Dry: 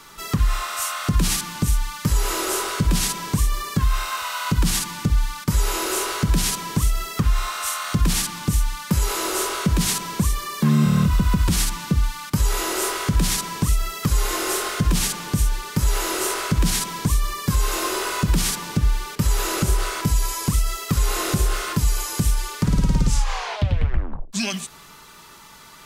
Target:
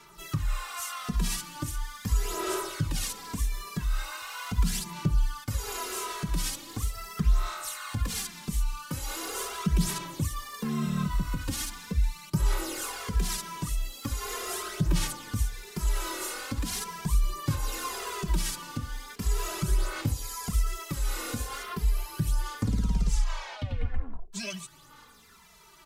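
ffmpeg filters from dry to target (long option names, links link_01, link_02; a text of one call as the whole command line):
ffmpeg -i in.wav -filter_complex "[0:a]aphaser=in_gain=1:out_gain=1:delay=4.2:decay=0.45:speed=0.4:type=sinusoidal,asettb=1/sr,asplit=3[link_01][link_02][link_03];[link_01]atrim=end=21.634[link_04];[link_02]atrim=start=21.63:end=22.27,asetpts=PTS-STARTPTS,afade=type=in:duration=0.004:curve=qsin,afade=type=out:start_time=0.636:duration=0.004:curve=qsin,equalizer=frequency=7200:width_type=o:width=0.91:gain=-10.5[link_05];[link_03]atrim=start=22.266[link_06];[link_04][link_05]acrossfade=duration=0.004:curve1=hsin:curve2=qsin[link_07];[link_07][link_06]acrossfade=duration=0.004:curve1=qsin:curve2=hsin,asplit=2[link_08][link_09];[link_09]adelay=2.6,afreqshift=-0.82[link_10];[link_08][link_10]amix=inputs=2:normalize=1,volume=-8dB" out.wav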